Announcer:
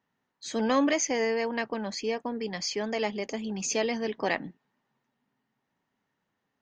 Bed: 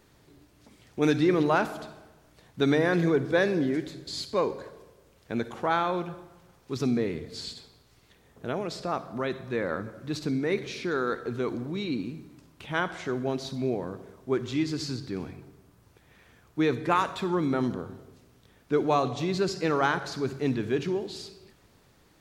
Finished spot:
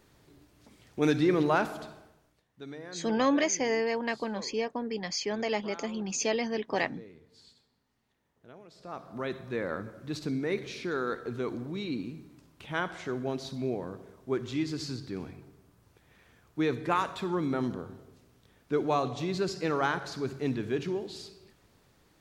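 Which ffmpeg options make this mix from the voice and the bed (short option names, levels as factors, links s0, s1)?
-filter_complex "[0:a]adelay=2500,volume=0.891[s0];[1:a]volume=5.31,afade=t=out:st=1.93:d=0.52:silence=0.125893,afade=t=in:st=8.74:d=0.56:silence=0.149624[s1];[s0][s1]amix=inputs=2:normalize=0"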